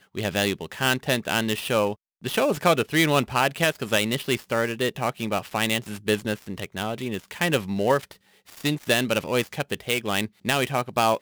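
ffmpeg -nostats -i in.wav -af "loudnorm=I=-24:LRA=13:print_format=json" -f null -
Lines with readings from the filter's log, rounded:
"input_i" : "-24.8",
"input_tp" : "-5.8",
"input_lra" : "3.0",
"input_thresh" : "-34.8",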